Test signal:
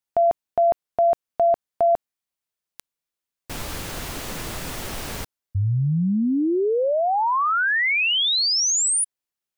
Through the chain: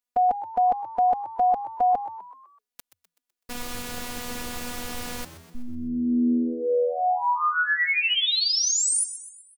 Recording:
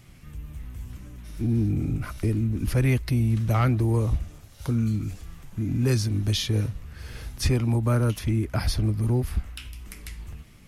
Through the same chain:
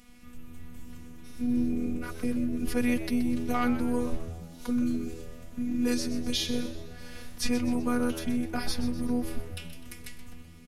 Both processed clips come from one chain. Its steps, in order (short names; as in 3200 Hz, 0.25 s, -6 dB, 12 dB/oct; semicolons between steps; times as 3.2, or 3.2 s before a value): robotiser 244 Hz; frequency-shifting echo 0.126 s, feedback 49%, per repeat +83 Hz, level -13 dB